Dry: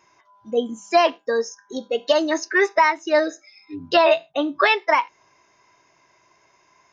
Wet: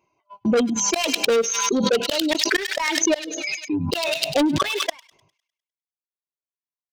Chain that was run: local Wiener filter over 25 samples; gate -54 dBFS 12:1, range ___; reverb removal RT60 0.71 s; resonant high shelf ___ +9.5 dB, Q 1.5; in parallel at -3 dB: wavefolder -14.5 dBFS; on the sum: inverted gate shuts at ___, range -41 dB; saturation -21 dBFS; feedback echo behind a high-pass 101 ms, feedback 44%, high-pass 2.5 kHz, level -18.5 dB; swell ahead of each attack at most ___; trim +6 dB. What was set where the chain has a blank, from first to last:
-55 dB, 2 kHz, -9 dBFS, 21 dB/s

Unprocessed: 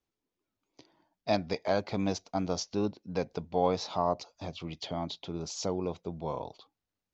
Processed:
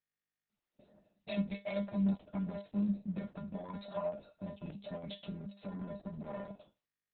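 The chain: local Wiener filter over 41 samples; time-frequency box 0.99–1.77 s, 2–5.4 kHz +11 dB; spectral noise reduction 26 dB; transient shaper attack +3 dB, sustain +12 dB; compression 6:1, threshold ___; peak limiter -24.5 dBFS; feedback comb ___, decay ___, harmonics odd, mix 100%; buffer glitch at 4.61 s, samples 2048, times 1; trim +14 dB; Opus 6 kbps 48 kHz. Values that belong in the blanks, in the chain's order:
-34 dBFS, 200 Hz, 0.24 s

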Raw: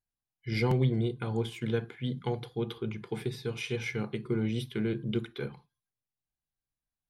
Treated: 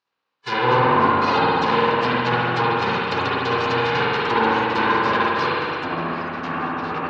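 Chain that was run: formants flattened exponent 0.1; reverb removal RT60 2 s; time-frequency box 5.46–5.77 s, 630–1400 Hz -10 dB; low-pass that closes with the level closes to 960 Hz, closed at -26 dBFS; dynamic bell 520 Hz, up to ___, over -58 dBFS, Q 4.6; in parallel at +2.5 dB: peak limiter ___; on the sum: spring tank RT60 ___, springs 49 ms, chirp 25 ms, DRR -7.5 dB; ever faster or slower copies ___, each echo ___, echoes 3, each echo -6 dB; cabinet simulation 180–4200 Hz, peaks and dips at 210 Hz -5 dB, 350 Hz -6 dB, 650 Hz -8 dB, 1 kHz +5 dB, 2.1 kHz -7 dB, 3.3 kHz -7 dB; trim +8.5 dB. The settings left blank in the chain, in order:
+6 dB, -31.5 dBFS, 2.4 s, 91 ms, -5 st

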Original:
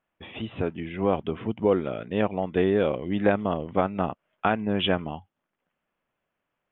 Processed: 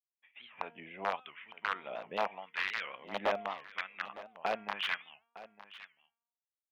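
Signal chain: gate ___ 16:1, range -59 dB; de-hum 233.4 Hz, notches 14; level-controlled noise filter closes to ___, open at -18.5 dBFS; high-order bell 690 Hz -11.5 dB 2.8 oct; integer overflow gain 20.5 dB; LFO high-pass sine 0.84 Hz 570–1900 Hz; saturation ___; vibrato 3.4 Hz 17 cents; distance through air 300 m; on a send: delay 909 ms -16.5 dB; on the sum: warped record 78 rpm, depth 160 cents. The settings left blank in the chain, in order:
-41 dBFS, 1.2 kHz, -15.5 dBFS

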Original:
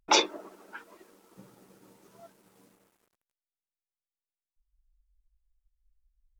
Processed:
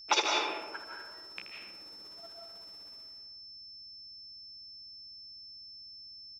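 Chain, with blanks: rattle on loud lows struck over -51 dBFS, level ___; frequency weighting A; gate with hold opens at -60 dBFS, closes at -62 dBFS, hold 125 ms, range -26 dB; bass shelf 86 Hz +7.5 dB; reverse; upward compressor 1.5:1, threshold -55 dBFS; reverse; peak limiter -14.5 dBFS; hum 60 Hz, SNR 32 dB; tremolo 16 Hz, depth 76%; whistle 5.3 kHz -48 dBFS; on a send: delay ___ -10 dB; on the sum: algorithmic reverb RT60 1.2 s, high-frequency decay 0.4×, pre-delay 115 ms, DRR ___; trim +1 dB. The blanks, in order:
-23 dBFS, 80 ms, 0 dB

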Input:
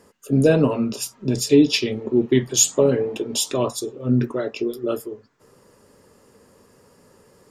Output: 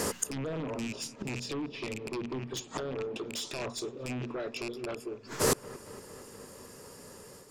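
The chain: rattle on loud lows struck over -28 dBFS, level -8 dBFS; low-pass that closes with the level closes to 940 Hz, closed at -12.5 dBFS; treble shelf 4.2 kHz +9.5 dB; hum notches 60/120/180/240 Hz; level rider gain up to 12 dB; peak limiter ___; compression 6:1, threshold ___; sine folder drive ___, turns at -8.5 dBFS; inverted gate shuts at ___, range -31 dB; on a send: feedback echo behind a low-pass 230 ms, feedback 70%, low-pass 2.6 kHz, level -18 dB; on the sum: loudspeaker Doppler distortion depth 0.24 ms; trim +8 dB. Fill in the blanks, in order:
-8.5 dBFS, -19 dBFS, 10 dB, -20 dBFS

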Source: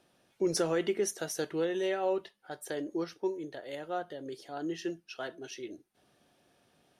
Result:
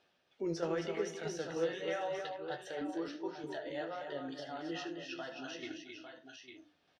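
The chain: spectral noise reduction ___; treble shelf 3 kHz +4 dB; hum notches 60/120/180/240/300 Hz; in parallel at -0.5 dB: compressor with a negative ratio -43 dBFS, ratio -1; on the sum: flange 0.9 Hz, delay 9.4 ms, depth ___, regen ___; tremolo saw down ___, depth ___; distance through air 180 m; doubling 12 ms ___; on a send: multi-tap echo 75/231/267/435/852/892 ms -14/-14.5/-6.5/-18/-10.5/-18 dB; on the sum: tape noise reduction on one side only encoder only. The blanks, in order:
14 dB, 9.1 ms, +49%, 3.2 Hz, 55%, -12.5 dB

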